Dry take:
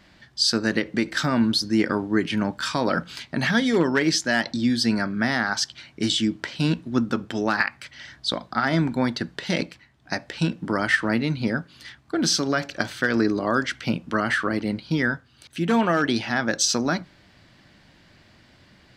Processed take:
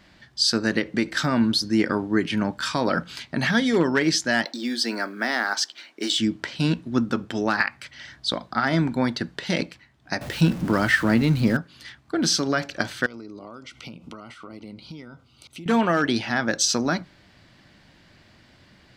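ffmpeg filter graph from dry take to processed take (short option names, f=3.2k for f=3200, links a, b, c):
-filter_complex "[0:a]asettb=1/sr,asplit=3[a][b][c];[a]atrim=end=4.454[d];[b]atrim=start=4.45:end=6.19,asetpts=PTS-STARTPTS,afade=t=in:d=0.004:c=qsin,afade=t=out:st=1.736:d=0.004:c=qsin,highpass=f=290:w=0.5412,highpass=f=290:w=1.3066,acrusher=bits=8:mode=log:mix=0:aa=0.000001[e];[c]atrim=start=6.186[f];[d][e]acrossfade=d=0.004:c1=hsin:c2=qsin[g];[g][f]acrossfade=d=0.004:c1=qsin:c2=hsin,asettb=1/sr,asplit=3[h][i][j];[h]atrim=end=10.214[k];[i]atrim=start=10.21:end=11.57,asetpts=PTS-STARTPTS,afade=t=in:d=0.004:c=qsin,afade=t=out:st=1.356:d=0.004:c=qsin,aeval=exprs='val(0)+0.5*0.0224*sgn(val(0))':c=same,lowshelf=f=190:g=8[l];[j]atrim=start=11.566[m];[k][l]acrossfade=d=0.004:c1=hsin:c2=qsin[n];[n][m]acrossfade=d=0.004:c1=qsin:c2=hsin,asettb=1/sr,asplit=3[o][p][q];[o]atrim=end=13.064[r];[p]atrim=start=13.06:end=15.66,asetpts=PTS-STARTPTS,afade=t=in:d=0.004:c=qsin,afade=t=out:st=2.596:d=0.004:c=qsin,acompressor=threshold=-35dB:ratio=12:attack=3.2:release=140:knee=1:detection=peak,asuperstop=centerf=1700:order=4:qfactor=2.9[s];[q]atrim=start=15.656[t];[r][s]acrossfade=d=0.004:c1=hsin:c2=qsin[u];[u][t]acrossfade=d=0.004:c1=qsin:c2=hsin"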